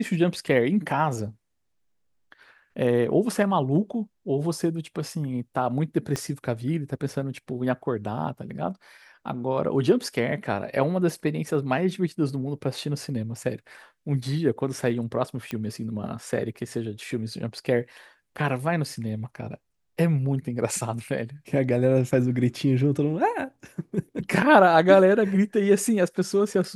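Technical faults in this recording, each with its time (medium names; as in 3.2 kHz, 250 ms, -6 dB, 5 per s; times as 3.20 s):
6.16 s: pop -14 dBFS
15.51 s: pop -17 dBFS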